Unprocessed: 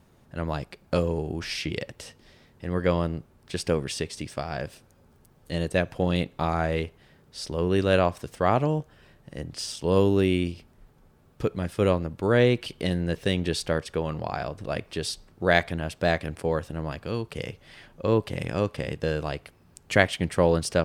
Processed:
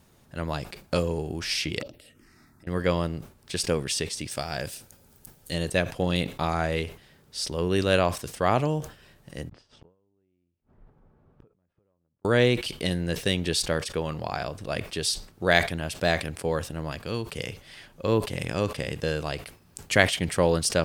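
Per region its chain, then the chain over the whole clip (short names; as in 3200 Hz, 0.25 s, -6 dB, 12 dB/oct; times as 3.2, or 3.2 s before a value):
1.8–2.67 envelope phaser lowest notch 440 Hz, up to 1900 Hz, full sweep at -34 dBFS + compressor 5:1, threshold -54 dBFS + small resonant body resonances 300/610/1300 Hz, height 10 dB, ringing for 25 ms
4.31–5.54 high shelf 5600 Hz +9 dB + notch 1100 Hz, Q 11
9.49–12.25 LPF 1200 Hz + compressor 3:1, threshold -31 dBFS + flipped gate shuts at -38 dBFS, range -38 dB
whole clip: high shelf 2900 Hz +9 dB; sustainer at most 150 dB/s; gain -1.5 dB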